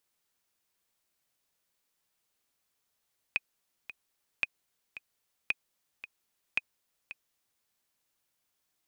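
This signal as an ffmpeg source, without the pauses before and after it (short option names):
-f lavfi -i "aevalsrc='pow(10,(-14-14.5*gte(mod(t,2*60/112),60/112))/20)*sin(2*PI*2500*mod(t,60/112))*exp(-6.91*mod(t,60/112)/0.03)':d=4.28:s=44100"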